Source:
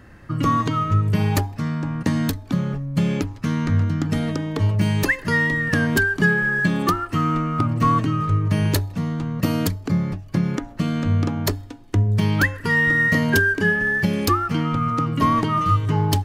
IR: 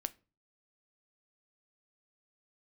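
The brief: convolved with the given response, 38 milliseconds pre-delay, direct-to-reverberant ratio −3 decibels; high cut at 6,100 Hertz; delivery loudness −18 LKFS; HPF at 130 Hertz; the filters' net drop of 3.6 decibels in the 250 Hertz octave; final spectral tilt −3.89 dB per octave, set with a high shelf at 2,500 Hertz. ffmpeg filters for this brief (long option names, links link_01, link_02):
-filter_complex "[0:a]highpass=130,lowpass=6100,equalizer=frequency=250:width_type=o:gain=-4,highshelf=frequency=2500:gain=-8.5,asplit=2[link_01][link_02];[1:a]atrim=start_sample=2205,adelay=38[link_03];[link_02][link_03]afir=irnorm=-1:irlink=0,volume=4dB[link_04];[link_01][link_04]amix=inputs=2:normalize=0,volume=0.5dB"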